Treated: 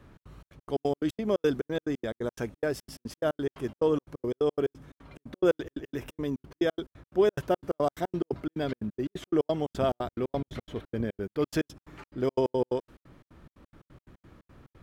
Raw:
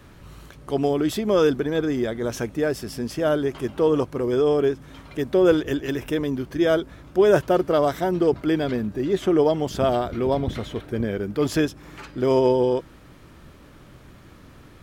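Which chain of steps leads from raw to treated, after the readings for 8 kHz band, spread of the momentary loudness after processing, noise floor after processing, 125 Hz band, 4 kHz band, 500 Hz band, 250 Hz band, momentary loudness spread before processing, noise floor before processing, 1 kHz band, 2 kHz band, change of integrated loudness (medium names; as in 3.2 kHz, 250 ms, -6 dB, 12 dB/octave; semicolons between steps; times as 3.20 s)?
no reading, 10 LU, under -85 dBFS, -8.0 dB, -9.0 dB, -8.5 dB, -8.5 dB, 9 LU, -48 dBFS, -8.0 dB, -8.5 dB, -8.0 dB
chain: trance gate "xx.xx.x.x.x.x." 177 bpm -60 dB; tape noise reduction on one side only decoder only; trim -5.5 dB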